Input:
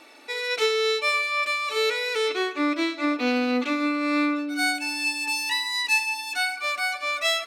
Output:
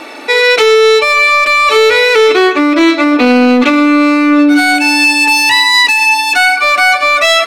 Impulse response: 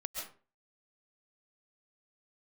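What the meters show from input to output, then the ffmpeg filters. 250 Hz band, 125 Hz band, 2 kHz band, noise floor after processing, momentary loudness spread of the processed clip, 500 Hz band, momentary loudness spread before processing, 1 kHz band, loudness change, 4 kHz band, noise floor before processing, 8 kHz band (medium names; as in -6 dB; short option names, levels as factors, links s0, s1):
+17.5 dB, no reading, +16.5 dB, -17 dBFS, 3 LU, +17.5 dB, 4 LU, +18.0 dB, +16.5 dB, +14.5 dB, -39 dBFS, +14.0 dB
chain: -filter_complex "[0:a]highshelf=f=3200:g=-8,asplit=2[s0][s1];[s1]aeval=exprs='0.0447*(abs(mod(val(0)/0.0447+3,4)-2)-1)':c=same,volume=0.299[s2];[s0][s2]amix=inputs=2:normalize=0,alimiter=level_in=12.6:limit=0.891:release=50:level=0:latency=1,volume=0.891"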